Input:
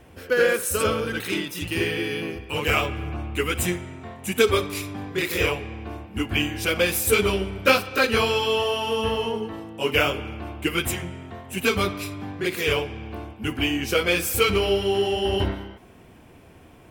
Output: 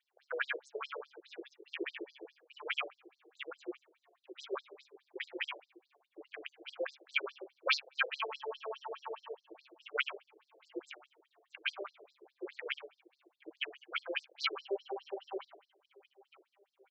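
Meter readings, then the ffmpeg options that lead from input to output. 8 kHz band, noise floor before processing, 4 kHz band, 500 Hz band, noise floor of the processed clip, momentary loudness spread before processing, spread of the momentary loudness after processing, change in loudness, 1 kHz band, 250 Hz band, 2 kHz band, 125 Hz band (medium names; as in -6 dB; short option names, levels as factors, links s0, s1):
-32.0 dB, -49 dBFS, -15.0 dB, -20.0 dB, -84 dBFS, 13 LU, 18 LU, -16.0 dB, -16.5 dB, -23.5 dB, -14.0 dB, under -40 dB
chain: -filter_complex "[0:a]afwtdn=0.0501,equalizer=f=500:t=o:w=1:g=-9,equalizer=f=4000:t=o:w=1:g=7,equalizer=f=8000:t=o:w=1:g=-8,tremolo=f=140:d=0.571,asplit=2[s0][s1];[s1]adelay=959,lowpass=f=4600:p=1,volume=0.0668,asplit=2[s2][s3];[s3]adelay=959,lowpass=f=4600:p=1,volume=0.48,asplit=2[s4][s5];[s5]adelay=959,lowpass=f=4600:p=1,volume=0.48[s6];[s2][s4][s6]amix=inputs=3:normalize=0[s7];[s0][s7]amix=inputs=2:normalize=0,afftfilt=real='re*between(b*sr/1024,450*pow(5900/450,0.5+0.5*sin(2*PI*4.8*pts/sr))/1.41,450*pow(5900/450,0.5+0.5*sin(2*PI*4.8*pts/sr))*1.41)':imag='im*between(b*sr/1024,450*pow(5900/450,0.5+0.5*sin(2*PI*4.8*pts/sr))/1.41,450*pow(5900/450,0.5+0.5*sin(2*PI*4.8*pts/sr))*1.41)':win_size=1024:overlap=0.75,volume=0.75"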